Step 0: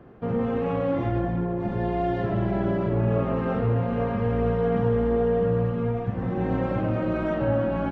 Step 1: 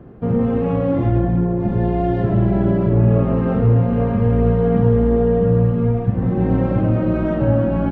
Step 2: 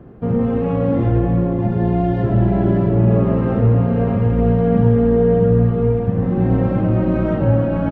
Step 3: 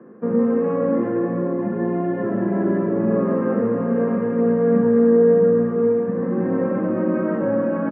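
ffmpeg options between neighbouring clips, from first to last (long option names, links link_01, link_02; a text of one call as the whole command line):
ffmpeg -i in.wav -af "lowshelf=frequency=460:gain=11" out.wav
ffmpeg -i in.wav -af "aecho=1:1:577:0.422" out.wav
ffmpeg -i in.wav -af "highpass=frequency=190:width=0.5412,highpass=frequency=190:width=1.3066,equalizer=frequency=220:width_type=q:width=4:gain=8,equalizer=frequency=340:width_type=q:width=4:gain=4,equalizer=frequency=500:width_type=q:width=4:gain=9,equalizer=frequency=740:width_type=q:width=4:gain=-4,equalizer=frequency=1100:width_type=q:width=4:gain=9,equalizer=frequency=1700:width_type=q:width=4:gain=8,lowpass=frequency=2300:width=0.5412,lowpass=frequency=2300:width=1.3066,volume=-6dB" out.wav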